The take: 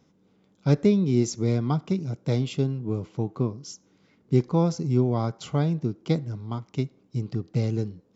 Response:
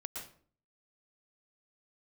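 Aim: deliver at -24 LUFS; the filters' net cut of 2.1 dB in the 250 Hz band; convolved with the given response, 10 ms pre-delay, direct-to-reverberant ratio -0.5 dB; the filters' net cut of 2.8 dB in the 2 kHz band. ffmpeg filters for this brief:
-filter_complex "[0:a]equalizer=f=250:t=o:g=-3,equalizer=f=2000:t=o:g=-3.5,asplit=2[s0][s1];[1:a]atrim=start_sample=2205,adelay=10[s2];[s1][s2]afir=irnorm=-1:irlink=0,volume=1.19[s3];[s0][s3]amix=inputs=2:normalize=0,volume=1.06"

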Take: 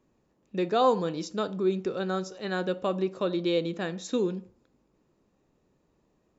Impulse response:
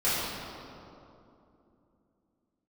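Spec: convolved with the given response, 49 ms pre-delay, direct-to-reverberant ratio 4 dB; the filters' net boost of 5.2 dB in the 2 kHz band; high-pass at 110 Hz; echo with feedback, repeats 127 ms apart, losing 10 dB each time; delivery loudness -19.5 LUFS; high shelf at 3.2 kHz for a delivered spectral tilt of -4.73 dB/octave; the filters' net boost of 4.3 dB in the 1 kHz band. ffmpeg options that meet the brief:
-filter_complex "[0:a]highpass=110,equalizer=f=1000:t=o:g=4.5,equalizer=f=2000:t=o:g=7.5,highshelf=f=3200:g=-7,aecho=1:1:127|254|381|508:0.316|0.101|0.0324|0.0104,asplit=2[s0][s1];[1:a]atrim=start_sample=2205,adelay=49[s2];[s1][s2]afir=irnorm=-1:irlink=0,volume=0.141[s3];[s0][s3]amix=inputs=2:normalize=0,volume=2"

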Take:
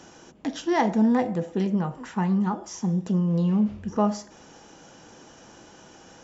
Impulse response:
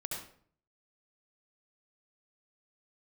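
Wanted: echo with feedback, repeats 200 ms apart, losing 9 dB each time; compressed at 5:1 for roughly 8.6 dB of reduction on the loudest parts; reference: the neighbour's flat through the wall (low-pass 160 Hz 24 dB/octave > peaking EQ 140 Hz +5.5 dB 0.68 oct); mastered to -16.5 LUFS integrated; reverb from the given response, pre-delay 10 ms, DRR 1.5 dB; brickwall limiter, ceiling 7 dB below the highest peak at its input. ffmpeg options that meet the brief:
-filter_complex "[0:a]acompressor=threshold=0.0447:ratio=5,alimiter=level_in=1.26:limit=0.0631:level=0:latency=1,volume=0.794,aecho=1:1:200|400|600|800:0.355|0.124|0.0435|0.0152,asplit=2[s0][s1];[1:a]atrim=start_sample=2205,adelay=10[s2];[s1][s2]afir=irnorm=-1:irlink=0,volume=0.75[s3];[s0][s3]amix=inputs=2:normalize=0,lowpass=f=160:w=0.5412,lowpass=f=160:w=1.3066,equalizer=f=140:t=o:w=0.68:g=5.5,volume=9.44"

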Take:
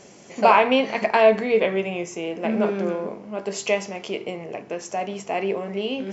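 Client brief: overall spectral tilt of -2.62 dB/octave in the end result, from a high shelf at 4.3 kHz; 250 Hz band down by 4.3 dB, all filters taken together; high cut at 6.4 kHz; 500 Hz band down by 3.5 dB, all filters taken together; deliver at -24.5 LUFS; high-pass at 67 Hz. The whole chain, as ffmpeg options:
-af "highpass=67,lowpass=6400,equalizer=f=250:t=o:g=-4.5,equalizer=f=500:t=o:g=-3.5,highshelf=f=4300:g=-6.5,volume=1.12"

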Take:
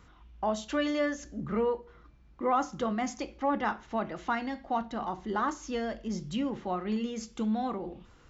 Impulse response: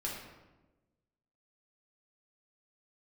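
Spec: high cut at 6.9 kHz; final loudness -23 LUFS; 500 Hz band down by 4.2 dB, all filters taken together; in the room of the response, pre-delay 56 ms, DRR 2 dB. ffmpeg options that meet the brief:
-filter_complex "[0:a]lowpass=6900,equalizer=f=500:t=o:g=-5,asplit=2[s0][s1];[1:a]atrim=start_sample=2205,adelay=56[s2];[s1][s2]afir=irnorm=-1:irlink=0,volume=0.631[s3];[s0][s3]amix=inputs=2:normalize=0,volume=2.82"

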